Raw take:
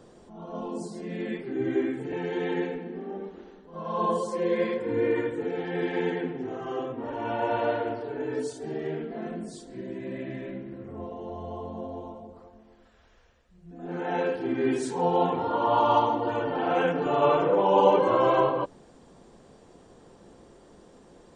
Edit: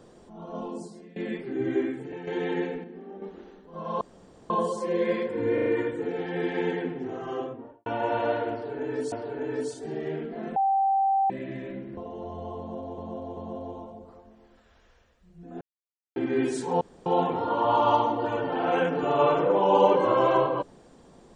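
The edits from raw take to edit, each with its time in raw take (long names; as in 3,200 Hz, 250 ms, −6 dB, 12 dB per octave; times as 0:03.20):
0:00.62–0:01.16: fade out, to −21 dB
0:01.79–0:02.27: fade out, to −9 dB
0:02.84–0:03.22: clip gain −6 dB
0:04.01: splice in room tone 0.49 s
0:05.05: stutter 0.04 s, 4 plays
0:06.72–0:07.25: fade out and dull
0:07.91–0:08.51: repeat, 2 plays
0:09.35–0:10.09: beep over 780 Hz −20 dBFS
0:10.76–0:11.03: remove
0:11.65–0:12.04: repeat, 3 plays
0:13.89–0:14.44: silence
0:15.09: splice in room tone 0.25 s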